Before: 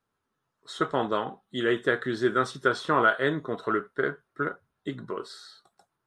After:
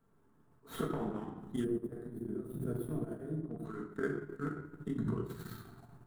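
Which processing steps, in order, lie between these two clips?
median filter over 9 samples; inverted gate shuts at -25 dBFS, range -24 dB; transient shaper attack -12 dB, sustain +10 dB; FFT filter 370 Hz 0 dB, 2.6 kHz -14 dB, 4.9 kHz -14 dB, 8.5 kHz -4 dB; simulated room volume 720 m³, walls mixed, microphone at 1.6 m; 1.64–3.65 s: time-frequency box 730–8500 Hz -16 dB; transient shaper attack +2 dB, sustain -10 dB; peaking EQ 540 Hz -4 dB 0.72 oct, from 1.20 s -14 dB; trim +11 dB

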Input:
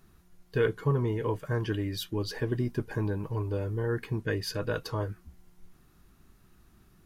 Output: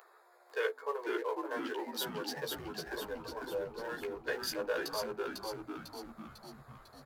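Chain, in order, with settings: local Wiener filter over 15 samples; steep high-pass 460 Hz 48 dB/octave; treble shelf 11 kHz +10 dB; upward compressor, threshold -48 dBFS; doubling 14 ms -4 dB; frequency-shifting echo 499 ms, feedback 54%, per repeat -92 Hz, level -3.5 dB; trim -2.5 dB

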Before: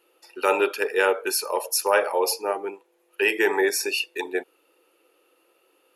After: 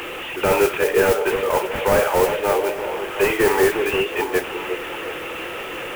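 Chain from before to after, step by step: one-bit delta coder 16 kbps, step -32 dBFS; modulation noise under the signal 21 dB; treble shelf 2.4 kHz +7.5 dB; on a send: repeats whose band climbs or falls 358 ms, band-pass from 430 Hz, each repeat 0.7 oct, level -5.5 dB; on the sum: trim +6 dB

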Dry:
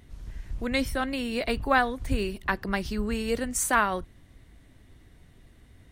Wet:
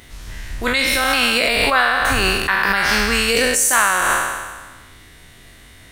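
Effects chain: spectral sustain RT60 1.39 s; tilt shelf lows -7.5 dB, about 700 Hz; in parallel at +3 dB: compressor with a negative ratio -26 dBFS, ratio -0.5

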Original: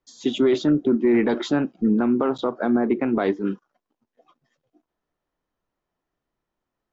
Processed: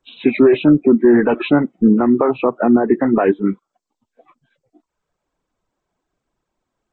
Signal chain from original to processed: knee-point frequency compression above 1.2 kHz 1.5:1; reverb removal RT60 0.72 s; trim +8.5 dB

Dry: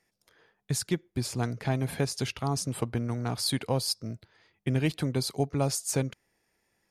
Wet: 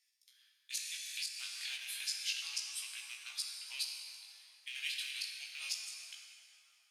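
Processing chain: rattle on loud lows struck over -27 dBFS, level -30 dBFS; ladder high-pass 2.6 kHz, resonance 30%; inverted gate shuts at -29 dBFS, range -26 dB; plate-style reverb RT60 3.6 s, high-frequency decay 0.55×, DRR -0.5 dB; chorus 0.31 Hz, delay 15 ms, depth 6.9 ms; 0.77–1.77 s: three bands compressed up and down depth 100%; trim +9 dB

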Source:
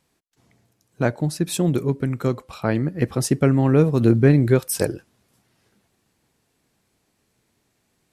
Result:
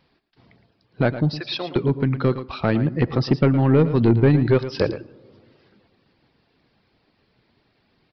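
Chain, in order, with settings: 1.34–1.76 s: high-pass 850 Hz 12 dB/octave; reverb removal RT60 0.52 s; in parallel at +1.5 dB: compression, threshold -25 dBFS, peak gain reduction 14.5 dB; on the sum: saturation -8 dBFS, distortion -15 dB; delay 113 ms -12.5 dB; on a send at -22 dB: reverberation RT60 2.1 s, pre-delay 4 ms; on the sum: resampled via 11.025 kHz

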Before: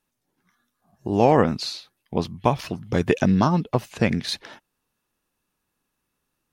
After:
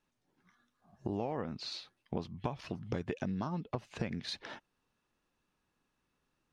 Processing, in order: 1.17–1.72 s: treble shelf 8.6 kHz -11 dB; compression 8:1, threshold -32 dBFS, peak gain reduction 19.5 dB; distance through air 73 m; trim -1.5 dB

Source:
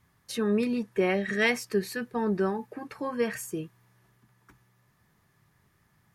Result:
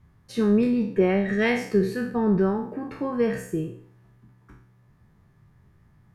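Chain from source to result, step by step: spectral sustain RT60 0.55 s; tilt EQ -3 dB/octave

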